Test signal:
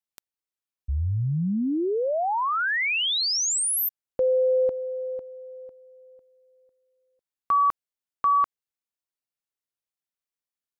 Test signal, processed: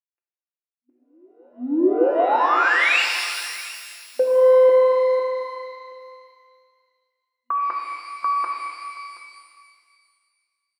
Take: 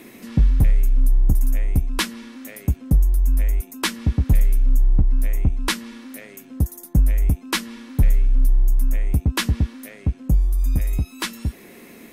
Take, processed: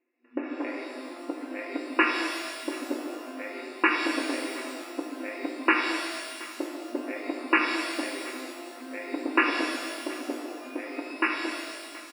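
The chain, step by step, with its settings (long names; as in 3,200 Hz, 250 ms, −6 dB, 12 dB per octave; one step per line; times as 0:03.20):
in parallel at −6.5 dB: soft clipping −22.5 dBFS
on the sum: comb filter 5.8 ms, depth 58%
noise gate −29 dBFS, range −40 dB
on a send: single-tap delay 725 ms −20 dB
on the sum: brick-wall band-pass 240–2,900 Hz
reverb with rising layers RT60 2 s, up +12 semitones, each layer −8 dB, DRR 0.5 dB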